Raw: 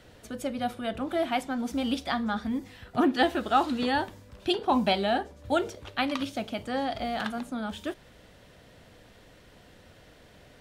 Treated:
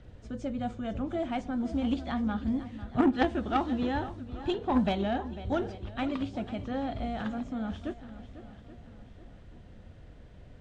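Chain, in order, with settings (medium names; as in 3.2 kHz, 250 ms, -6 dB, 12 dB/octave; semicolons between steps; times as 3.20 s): knee-point frequency compression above 3.5 kHz 1.5:1; treble shelf 6.7 kHz +11.5 dB; in parallel at -6.5 dB: saturation -25.5 dBFS, distortion -9 dB; on the sum: RIAA curve playback; on a send: shuffle delay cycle 830 ms, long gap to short 1.5:1, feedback 36%, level -14 dB; on the sum: Chebyshev shaper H 3 -11 dB, 5 -26 dB, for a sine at -6.5 dBFS; trim -2 dB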